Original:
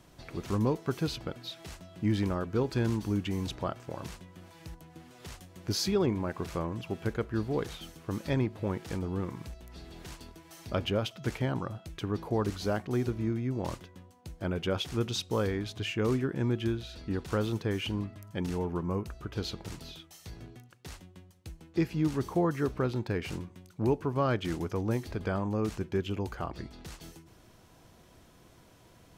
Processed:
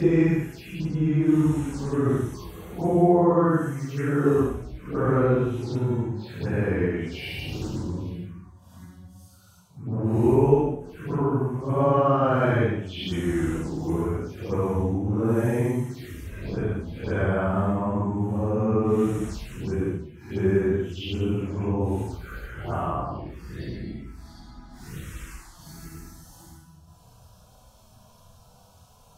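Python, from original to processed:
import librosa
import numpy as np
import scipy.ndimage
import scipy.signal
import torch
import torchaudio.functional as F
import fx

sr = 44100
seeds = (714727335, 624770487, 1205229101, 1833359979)

y = fx.paulstretch(x, sr, seeds[0], factor=4.9, window_s=0.1, from_s=21.77)
y = fx.env_phaser(y, sr, low_hz=280.0, high_hz=4600.0, full_db=-30.0)
y = y * librosa.db_to_amplitude(6.5)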